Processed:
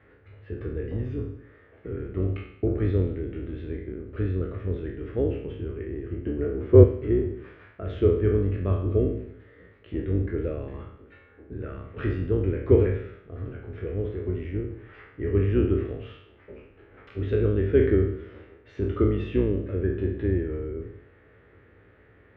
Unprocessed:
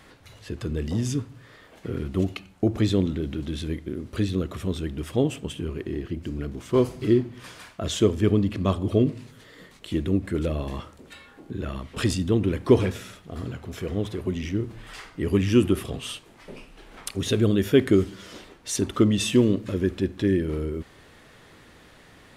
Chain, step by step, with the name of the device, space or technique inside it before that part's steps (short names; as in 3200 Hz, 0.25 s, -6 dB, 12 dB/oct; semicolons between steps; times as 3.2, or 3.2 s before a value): spectral trails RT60 0.71 s; 6.26–6.84 bell 450 Hz +10.5 dB 2.6 oct; sub-octave bass pedal (octaver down 2 oct, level 0 dB; speaker cabinet 70–2100 Hz, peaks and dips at 96 Hz +10 dB, 150 Hz -7 dB, 220 Hz -6 dB, 430 Hz +6 dB, 730 Hz -6 dB, 1000 Hz -9 dB); gain -6 dB